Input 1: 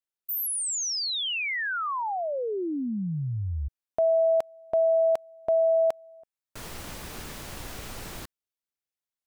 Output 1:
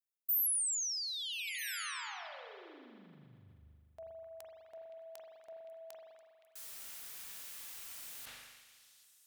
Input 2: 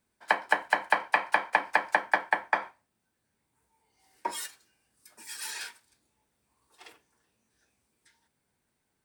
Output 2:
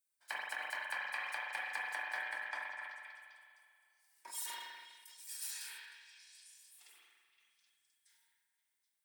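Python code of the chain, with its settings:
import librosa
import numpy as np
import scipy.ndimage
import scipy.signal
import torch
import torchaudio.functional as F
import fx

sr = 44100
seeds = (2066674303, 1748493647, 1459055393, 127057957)

y = scipy.signal.lfilter([1.0, -0.97], [1.0], x)
y = fx.echo_stepped(y, sr, ms=259, hz=1600.0, octaves=0.7, feedback_pct=70, wet_db=-5)
y = fx.rev_spring(y, sr, rt60_s=2.2, pass_ms=(40,), chirp_ms=65, drr_db=-1.0)
y = fx.sustainer(y, sr, db_per_s=34.0)
y = F.gain(torch.from_numpy(y), -5.5).numpy()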